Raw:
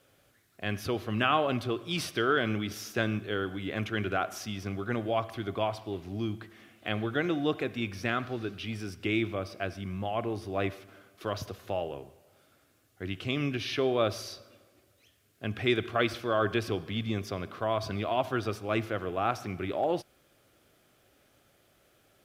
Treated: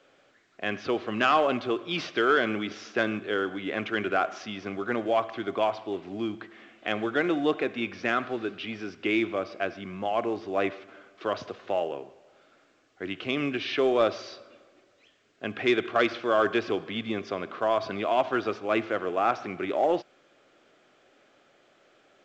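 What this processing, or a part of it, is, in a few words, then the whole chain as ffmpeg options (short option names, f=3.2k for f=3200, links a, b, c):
telephone: -af "highpass=270,lowpass=3.2k,asoftclip=type=tanh:threshold=-16.5dB,volume=5.5dB" -ar 16000 -c:a pcm_alaw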